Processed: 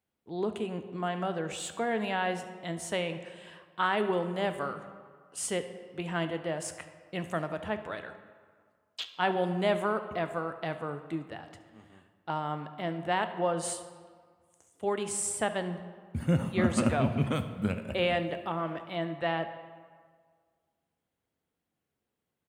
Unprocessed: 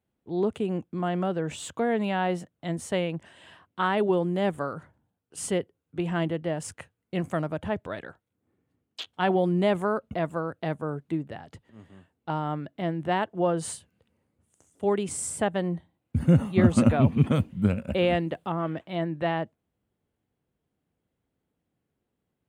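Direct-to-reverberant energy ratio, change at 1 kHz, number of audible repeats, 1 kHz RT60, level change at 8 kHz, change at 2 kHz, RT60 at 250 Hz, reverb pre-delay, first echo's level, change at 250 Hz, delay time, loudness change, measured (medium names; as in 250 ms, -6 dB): 8.5 dB, -2.0 dB, 1, 1.8 s, +0.5 dB, 0.0 dB, 1.6 s, 3 ms, -18.5 dB, -6.5 dB, 71 ms, -4.5 dB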